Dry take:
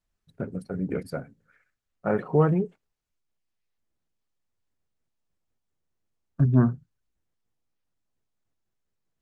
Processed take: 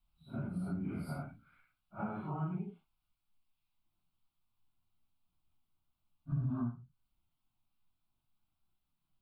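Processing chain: phase randomisation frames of 200 ms; compression 6:1, threshold -35 dBFS, peak gain reduction 18.5 dB; static phaser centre 1.8 kHz, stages 6; trim +3 dB

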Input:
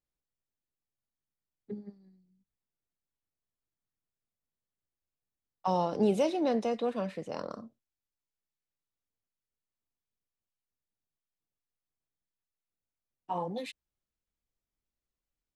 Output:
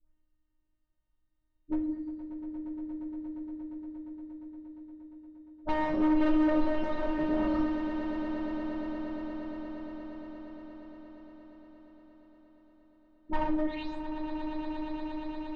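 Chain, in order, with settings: delay that grows with frequency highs late, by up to 287 ms; robot voice 308 Hz; in parallel at +2 dB: compression, threshold -43 dBFS, peak gain reduction 16.5 dB; on the sum: Chebyshev shaper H 5 -26 dB, 6 -30 dB, 8 -21 dB, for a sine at -16.5 dBFS; RIAA curve playback; overload inside the chain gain 29 dB; distance through air 180 m; echo with a slow build-up 117 ms, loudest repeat 8, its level -13 dB; on a send at -1.5 dB: reverberation RT60 0.75 s, pre-delay 5 ms; on the sum: trim +2 dB

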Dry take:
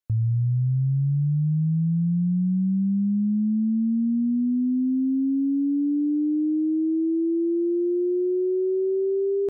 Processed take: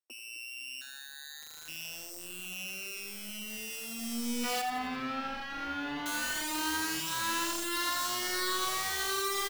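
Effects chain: sorted samples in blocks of 16 samples; steep high-pass 250 Hz 96 dB/octave; 0.81–1.68 s: ring modulator 1.1 kHz; integer overflow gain 24.5 dB; 4.61–6.06 s: distance through air 310 m; two-band feedback delay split 410 Hz, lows 254 ms, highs 86 ms, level -10 dB; endless flanger 5.6 ms -0.95 Hz; trim -2 dB

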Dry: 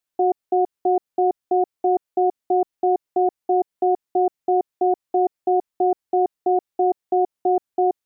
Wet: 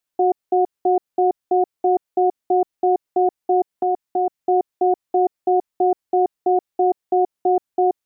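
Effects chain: 3.73–4.39 s: dynamic bell 420 Hz, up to -5 dB, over -33 dBFS, Q 1.3; trim +1.5 dB

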